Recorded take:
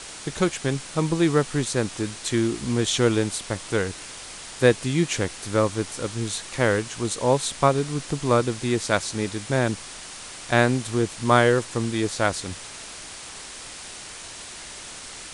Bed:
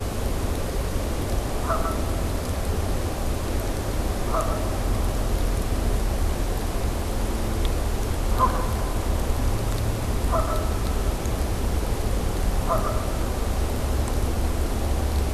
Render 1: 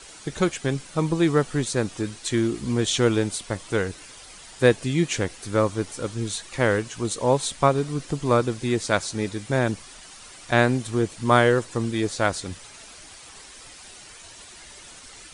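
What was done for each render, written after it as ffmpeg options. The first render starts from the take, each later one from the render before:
-af "afftdn=nr=9:nf=-39"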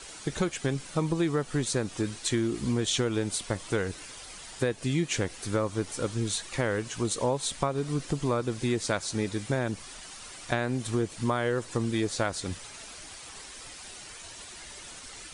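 -af "alimiter=limit=-10dB:level=0:latency=1:release=267,acompressor=threshold=-24dB:ratio=4"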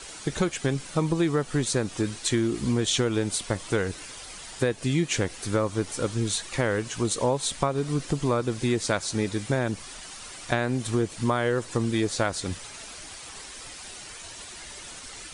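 -af "volume=3dB"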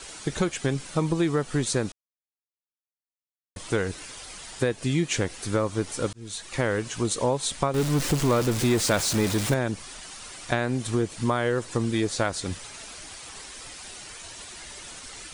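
-filter_complex "[0:a]asettb=1/sr,asplit=3[a][b][c];[a]atrim=end=7.744[d];[b]atrim=start=7.74:end=9.54,asetpts=PTS-STARTPTS,afade=t=in:d=0.004:c=qsin,afade=t=out:st=1.796:d=0.004:c=qsin,aeval=exprs='val(0)+0.5*0.0562*sgn(val(0))':c=same[e];[c]atrim=start=9.536[f];[d][e]acrossfade=d=0.004:c1=hsin:c2=qsin[g];[g][f]acrossfade=d=0.004:c1=qsin:c2=hsin,asplit=4[h][i][j][k];[h]atrim=end=1.92,asetpts=PTS-STARTPTS,afade=t=out:st=1.916:d=0.004:c=hsin[l];[i]atrim=start=1.92:end=3.56,asetpts=PTS-STARTPTS,volume=0[m];[j]atrim=start=3.56:end=6.13,asetpts=PTS-STARTPTS,afade=t=in:d=0.004:c=hsin,afade=t=out:st=2.566:d=0.004:c=hsin[n];[k]atrim=start=6.13,asetpts=PTS-STARTPTS,afade=t=in:d=0.49[o];[l][m][n][o]concat=n=4:v=0:a=1"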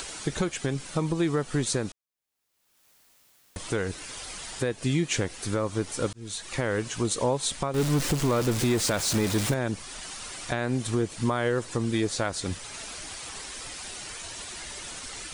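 -af "acompressor=mode=upward:threshold=-33dB:ratio=2.5,alimiter=limit=-15dB:level=0:latency=1:release=206"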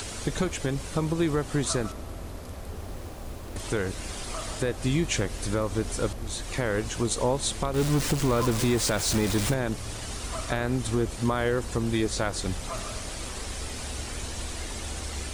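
-filter_complex "[1:a]volume=-12.5dB[a];[0:a][a]amix=inputs=2:normalize=0"

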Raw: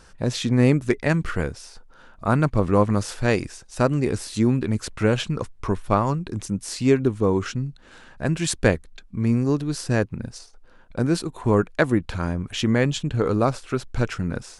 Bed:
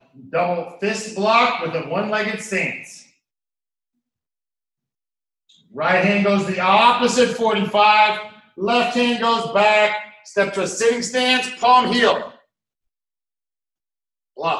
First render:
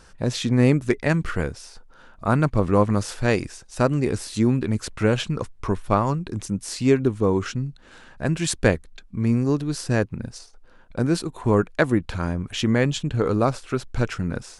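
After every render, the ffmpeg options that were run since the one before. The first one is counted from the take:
-af anull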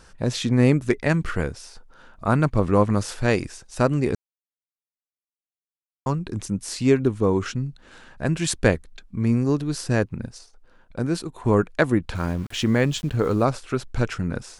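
-filter_complex "[0:a]asettb=1/sr,asplit=3[a][b][c];[a]atrim=end=12.154[d];[b]atrim=start=12.15:end=13.43,asetpts=PTS-STARTPTS,afade=t=in:d=0.004:c=qsin,afade=t=out:st=1.276:d=0.004:c=qsin,aeval=exprs='val(0)*gte(abs(val(0)),0.0106)':c=same[e];[c]atrim=start=13.426[f];[d][e]acrossfade=d=0.004:c1=hsin:c2=qsin[g];[g][f]acrossfade=d=0.004:c1=qsin:c2=hsin,asplit=5[h][i][j][k][l];[h]atrim=end=4.15,asetpts=PTS-STARTPTS,afade=t=out:st=4.146:d=0.004:c=hsin[m];[i]atrim=start=4.15:end=6.06,asetpts=PTS-STARTPTS,volume=0[n];[j]atrim=start=6.06:end=10.272,asetpts=PTS-STARTPTS,afade=t=in:d=0.004:c=hsin[o];[k]atrim=start=10.268:end=11.452,asetpts=PTS-STARTPTS,volume=-3dB[p];[l]atrim=start=11.448[q];[m][n][o]concat=n=3:v=0:a=1[r];[r][p]acrossfade=d=0.004:c1=hsin:c2=hsin[s];[s][q]acrossfade=d=0.004:c1=hsin:c2=hsin"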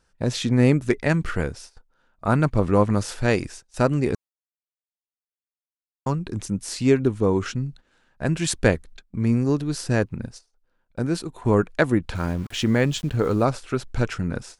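-af "bandreject=f=1.1k:w=22,agate=range=-16dB:threshold=-40dB:ratio=16:detection=peak"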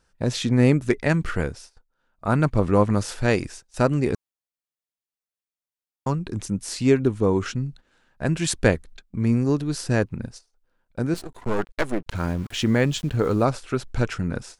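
-filter_complex "[0:a]asettb=1/sr,asplit=3[a][b][c];[a]atrim=end=11.144[d];[b]atrim=start=11.14:end=12.14,asetpts=PTS-STARTPTS,afade=t=in:d=0.004:c=qsin,afade=t=out:st=0.996:d=0.004:c=qsin,aeval=exprs='max(val(0),0)':c=same[e];[c]atrim=start=12.136[f];[d][e]acrossfade=d=0.004:c1=hsin:c2=qsin[g];[g][f]acrossfade=d=0.004:c1=qsin:c2=hsin,asplit=3[h][i][j];[h]atrim=end=1.91,asetpts=PTS-STARTPTS,afade=t=out:st=1.46:d=0.45:silence=0.354813[k];[i]atrim=start=1.91:end=1.96,asetpts=PTS-STARTPTS,volume=-9dB[l];[j]atrim=start=1.96,asetpts=PTS-STARTPTS,afade=t=in:d=0.45:silence=0.354813[m];[k][l][m]concat=n=3:v=0:a=1"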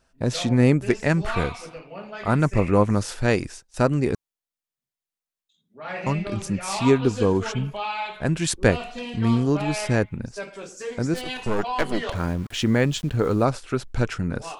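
-filter_complex "[1:a]volume=-16dB[a];[0:a][a]amix=inputs=2:normalize=0"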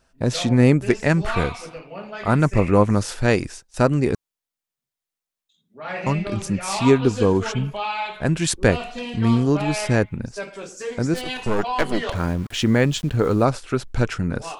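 -af "volume=2.5dB,alimiter=limit=-2dB:level=0:latency=1"

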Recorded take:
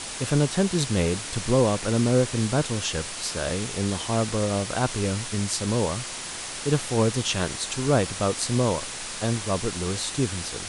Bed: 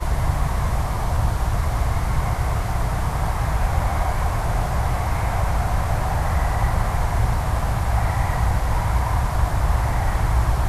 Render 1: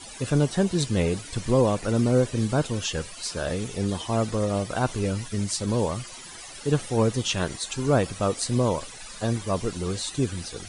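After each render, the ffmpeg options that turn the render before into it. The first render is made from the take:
-af "afftdn=nr=15:nf=-35"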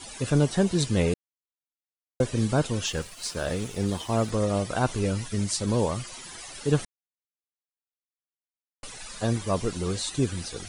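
-filter_complex "[0:a]asettb=1/sr,asplit=3[a][b][c];[a]atrim=end=2.864[d];[b]atrim=start=2.86:end=4.3,asetpts=PTS-STARTPTS,afade=t=in:d=0.004:c=qsin,afade=t=out:st=1.436:d=0.004:c=qsin,aeval=exprs='sgn(val(0))*max(abs(val(0))-0.00473,0)':c=same[e];[c]atrim=start=4.296[f];[d][e]acrossfade=d=0.004:c1=hsin:c2=qsin[g];[g][f]acrossfade=d=0.004:c1=qsin:c2=hsin,asplit=5[h][i][j][k][l];[h]atrim=end=1.14,asetpts=PTS-STARTPTS,afade=t=out:st=1.136:d=0.004:c=hsin[m];[i]atrim=start=1.14:end=2.2,asetpts=PTS-STARTPTS,volume=0[n];[j]atrim=start=2.2:end=6.85,asetpts=PTS-STARTPTS,afade=t=in:d=0.004:c=hsin,afade=t=out:st=4.646:d=0.004:c=hsin[o];[k]atrim=start=6.85:end=8.83,asetpts=PTS-STARTPTS,volume=0[p];[l]atrim=start=8.83,asetpts=PTS-STARTPTS,afade=t=in:d=0.004:c=hsin[q];[m][n][o][p][q]concat=n=5:v=0:a=1"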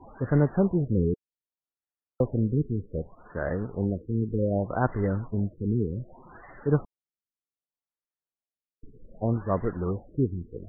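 -filter_complex "[0:a]acrossover=split=540|2500[a][b][c];[a]acrusher=bits=5:mode=log:mix=0:aa=0.000001[d];[d][b][c]amix=inputs=3:normalize=0,afftfilt=real='re*lt(b*sr/1024,440*pow(2100/440,0.5+0.5*sin(2*PI*0.65*pts/sr)))':imag='im*lt(b*sr/1024,440*pow(2100/440,0.5+0.5*sin(2*PI*0.65*pts/sr)))':win_size=1024:overlap=0.75"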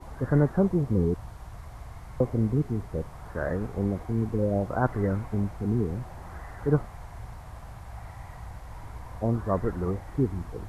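-filter_complex "[1:a]volume=-21dB[a];[0:a][a]amix=inputs=2:normalize=0"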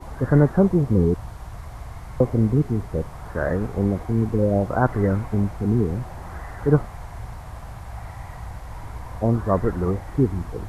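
-af "volume=6dB,alimiter=limit=-3dB:level=0:latency=1"

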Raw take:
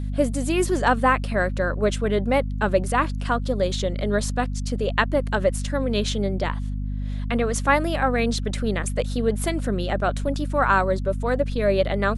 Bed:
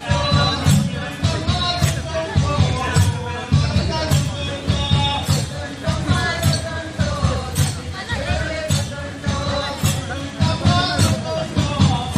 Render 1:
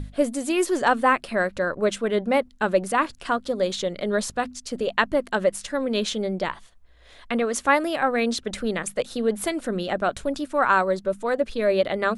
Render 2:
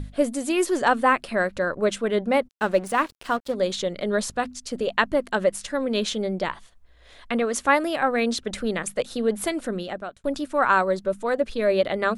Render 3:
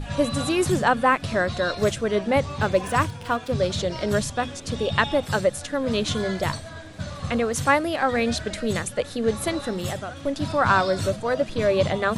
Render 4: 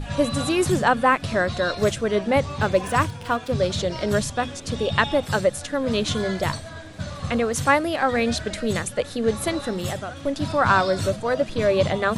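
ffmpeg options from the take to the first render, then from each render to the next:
-af "bandreject=f=50:t=h:w=6,bandreject=f=100:t=h:w=6,bandreject=f=150:t=h:w=6,bandreject=f=200:t=h:w=6,bandreject=f=250:t=h:w=6"
-filter_complex "[0:a]asplit=3[a][b][c];[a]afade=t=out:st=2.47:d=0.02[d];[b]aeval=exprs='sgn(val(0))*max(abs(val(0))-0.00841,0)':c=same,afade=t=in:st=2.47:d=0.02,afade=t=out:st=3.54:d=0.02[e];[c]afade=t=in:st=3.54:d=0.02[f];[d][e][f]amix=inputs=3:normalize=0,asplit=2[g][h];[g]atrim=end=10.24,asetpts=PTS-STARTPTS,afade=t=out:st=9.62:d=0.62[i];[h]atrim=start=10.24,asetpts=PTS-STARTPTS,afade=t=in:d=0.004:c=hsin[j];[i][j]concat=n=2:v=0:a=1"
-filter_complex "[1:a]volume=-13dB[a];[0:a][a]amix=inputs=2:normalize=0"
-af "volume=1dB"

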